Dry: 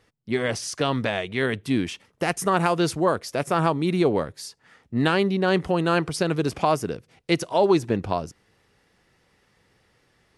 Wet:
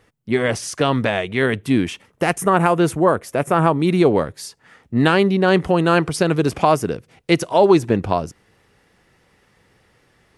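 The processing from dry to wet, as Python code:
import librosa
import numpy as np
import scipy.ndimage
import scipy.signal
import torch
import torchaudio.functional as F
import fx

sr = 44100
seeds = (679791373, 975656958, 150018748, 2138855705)

y = fx.peak_eq(x, sr, hz=4700.0, db=fx.steps((0.0, -5.5), (2.38, -13.5), (3.8, -3.5)), octaves=1.0)
y = y * 10.0 ** (6.0 / 20.0)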